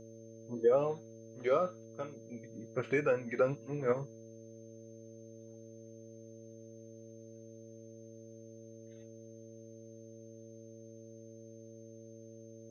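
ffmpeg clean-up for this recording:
-af "bandreject=f=112.9:t=h:w=4,bandreject=f=225.8:t=h:w=4,bandreject=f=338.7:t=h:w=4,bandreject=f=451.6:t=h:w=4,bandreject=f=564.5:t=h:w=4,bandreject=f=6.3k:w=30,agate=range=-21dB:threshold=-44dB"

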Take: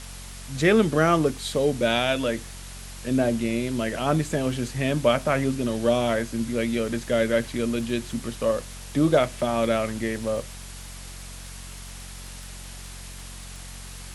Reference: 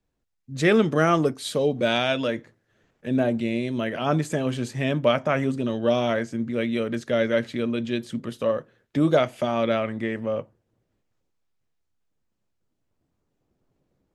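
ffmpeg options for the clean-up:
-af "adeclick=t=4,bandreject=f=45.5:t=h:w=4,bandreject=f=91:t=h:w=4,bandreject=f=136.5:t=h:w=4,bandreject=f=182:t=h:w=4,bandreject=f=227.5:t=h:w=4,afwtdn=0.0089"

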